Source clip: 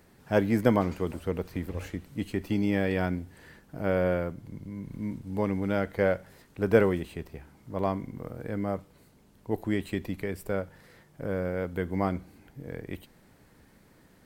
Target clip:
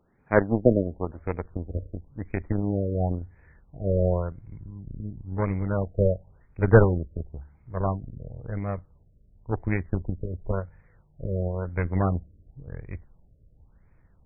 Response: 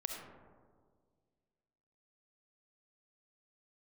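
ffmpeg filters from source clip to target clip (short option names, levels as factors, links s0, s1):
-af "asubboost=boost=9.5:cutoff=83,aeval=exprs='0.376*(cos(1*acos(clip(val(0)/0.376,-1,1)))-cos(1*PI/2))+0.0422*(cos(7*acos(clip(val(0)/0.376,-1,1)))-cos(7*PI/2))':c=same,afftfilt=real='re*lt(b*sr/1024,630*pow(2600/630,0.5+0.5*sin(2*PI*0.95*pts/sr)))':imag='im*lt(b*sr/1024,630*pow(2600/630,0.5+0.5*sin(2*PI*0.95*pts/sr)))':win_size=1024:overlap=0.75,volume=2"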